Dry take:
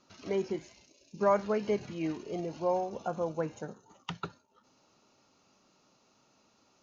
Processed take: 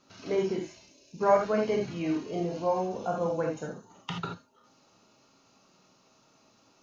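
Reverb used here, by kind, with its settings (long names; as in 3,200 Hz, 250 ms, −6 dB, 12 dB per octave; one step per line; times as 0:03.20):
reverb whose tail is shaped and stops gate 100 ms flat, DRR −0.5 dB
level +1 dB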